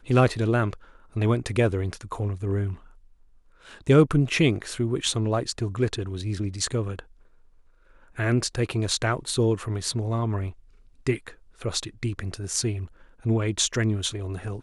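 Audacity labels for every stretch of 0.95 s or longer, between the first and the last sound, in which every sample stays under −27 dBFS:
2.730000	3.870000	silence
6.990000	8.190000	silence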